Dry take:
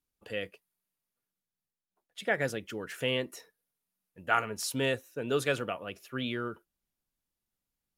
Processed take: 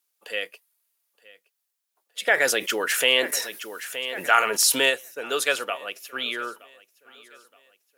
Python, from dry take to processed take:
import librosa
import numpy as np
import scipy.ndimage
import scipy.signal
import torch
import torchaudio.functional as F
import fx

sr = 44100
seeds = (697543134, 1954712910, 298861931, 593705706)

y = scipy.signal.sosfilt(scipy.signal.butter(2, 450.0, 'highpass', fs=sr, output='sos'), x)
y = fx.tilt_eq(y, sr, slope=2.0)
y = fx.echo_feedback(y, sr, ms=921, feedback_pct=41, wet_db=-22)
y = fx.env_flatten(y, sr, amount_pct=50, at=(2.26, 4.89), fade=0.02)
y = F.gain(torch.from_numpy(y), 7.0).numpy()